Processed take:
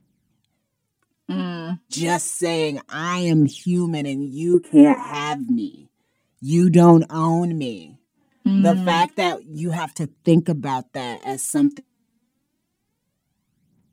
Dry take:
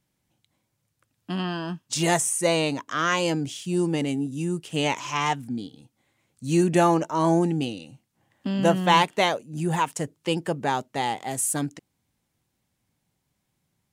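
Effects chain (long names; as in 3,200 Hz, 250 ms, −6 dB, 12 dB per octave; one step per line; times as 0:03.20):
parametric band 220 Hz +12 dB 1.3 octaves
phase shifter 0.29 Hz, delay 4.5 ms, feedback 68%
0:04.54–0:05.14: drawn EQ curve 120 Hz 0 dB, 380 Hz +9 dB, 1,800 Hz +6 dB, 4,600 Hz −26 dB, 9,900 Hz +8 dB, 14,000 Hz −9 dB
level −3.5 dB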